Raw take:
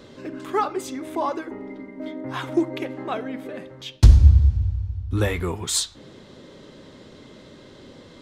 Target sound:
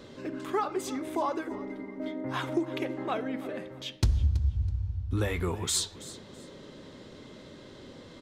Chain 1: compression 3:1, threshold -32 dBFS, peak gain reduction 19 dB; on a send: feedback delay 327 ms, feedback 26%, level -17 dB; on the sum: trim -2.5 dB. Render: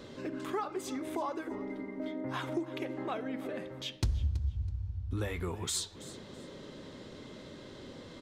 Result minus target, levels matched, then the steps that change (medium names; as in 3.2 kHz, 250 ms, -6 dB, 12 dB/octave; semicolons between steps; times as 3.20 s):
compression: peak gain reduction +6 dB
change: compression 3:1, threshold -23 dBFS, peak gain reduction 13 dB